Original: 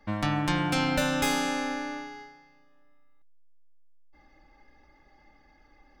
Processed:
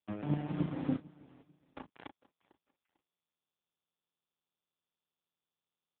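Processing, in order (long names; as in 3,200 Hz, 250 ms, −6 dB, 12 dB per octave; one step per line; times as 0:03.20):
adaptive Wiener filter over 25 samples
Bessel low-pass filter 1,000 Hz, order 6
treble cut that deepens with the level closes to 600 Hz, closed at −25.5 dBFS
dynamic equaliser 220 Hz, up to +3 dB, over −44 dBFS, Q 2.7
0:00.96–0:02.07: compressor whose output falls as the input rises −41 dBFS, ratio −1
square-wave tremolo 3.4 Hz, depth 60%, duty 15%
centre clipping without the shift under −35.5 dBFS
double-tracking delay 35 ms −10.5 dB
repeating echo 448 ms, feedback 29%, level −21 dB
buffer that repeats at 0:01.29, samples 1,024, times 4
AMR narrowband 5.15 kbit/s 8,000 Hz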